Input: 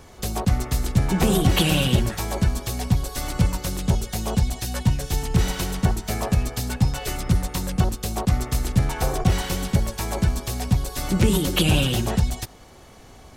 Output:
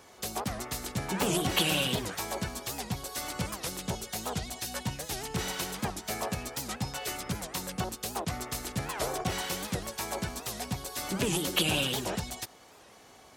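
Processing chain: HPF 450 Hz 6 dB/oct; record warp 78 rpm, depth 250 cents; gain -4 dB

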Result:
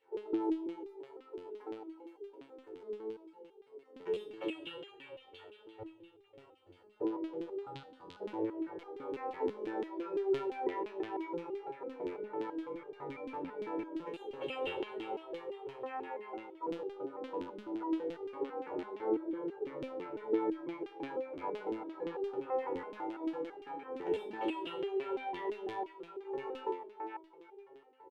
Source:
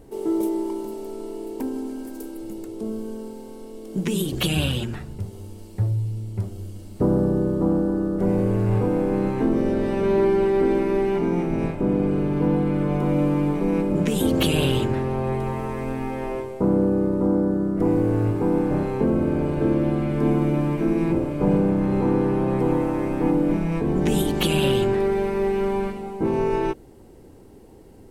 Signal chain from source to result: tone controls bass -12 dB, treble -10 dB; comb 2.2 ms, depth 63%; split-band echo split 370 Hz, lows 0.177 s, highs 0.457 s, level -11 dB; LFO band-pass saw down 5.8 Hz 280–3100 Hz; 7.59–8.2 graphic EQ 125/250/500/4000/8000 Hz +11/-11/-11/+11/+7 dB; stepped resonator 6 Hz 89–400 Hz; gain +4.5 dB

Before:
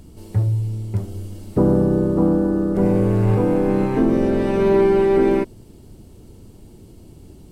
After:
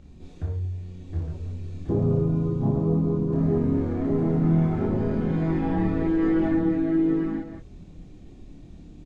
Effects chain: tapped delay 47/601/714/860 ms -4/-5.5/-4/-13 dB; in parallel at -1.5 dB: compressor, threshold -27 dBFS, peak gain reduction 16 dB; on the sum: air absorption 91 m; varispeed -17%; chorus voices 4, 0.58 Hz, delay 27 ms, depth 3.4 ms; gain -7 dB

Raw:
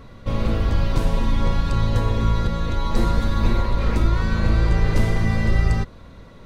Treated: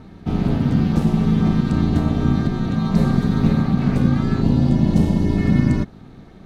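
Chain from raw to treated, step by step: ring modulator 190 Hz; low shelf 230 Hz +6 dB; spectral gain 4.42–5.37, 1100–2600 Hz -8 dB

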